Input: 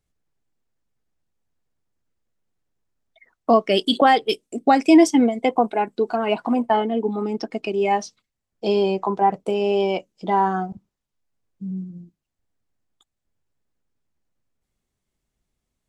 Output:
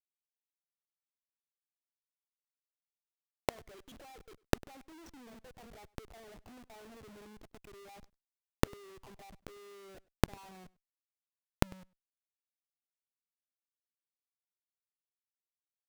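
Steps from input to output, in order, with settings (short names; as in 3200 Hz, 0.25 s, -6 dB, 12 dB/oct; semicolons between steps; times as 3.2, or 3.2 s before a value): formant sharpening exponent 1.5; LPF 5300 Hz 12 dB/oct; de-hum 236.4 Hz, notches 11; Schmitt trigger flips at -28.5 dBFS; flipped gate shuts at -28 dBFS, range -40 dB; outdoor echo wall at 17 m, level -24 dB; gain +10.5 dB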